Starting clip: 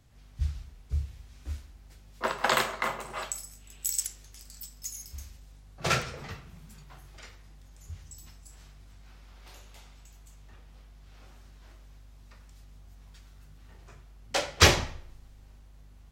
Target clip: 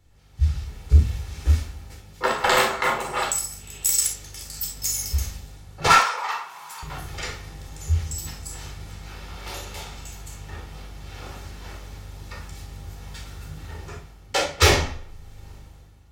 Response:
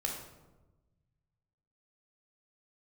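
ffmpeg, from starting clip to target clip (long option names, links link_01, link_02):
-filter_complex "[0:a]dynaudnorm=framelen=130:gausssize=9:maxgain=16dB,asettb=1/sr,asplit=3[link_01][link_02][link_03];[link_01]atrim=end=5.874[link_04];[link_02]atrim=start=5.87:end=6.83,asetpts=PTS-STARTPTS,afade=type=in:duration=0.004:curve=qsin,afade=type=out:start_time=0.956:duration=0.004:curve=qsin,highpass=frequency=980:width_type=q:width=6.2[link_05];[link_03]atrim=start=6.826[link_06];[link_04][link_05]acrossfade=duration=0.004:curve1=hsin:curve2=qsin[link_07];[link_07][link_06]acrossfade=duration=0.004:curve1=qsin:curve2=hsin,asoftclip=type=tanh:threshold=-10.5dB[link_08];[1:a]atrim=start_sample=2205,atrim=end_sample=3087[link_09];[link_08][link_09]afir=irnorm=-1:irlink=0"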